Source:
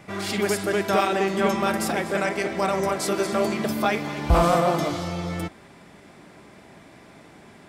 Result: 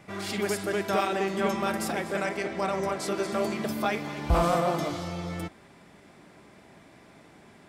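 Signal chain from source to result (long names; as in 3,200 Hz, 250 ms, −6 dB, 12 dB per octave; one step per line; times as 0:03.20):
0:02.37–0:03.32: high-shelf EQ 11,000 Hz −10 dB
level −5 dB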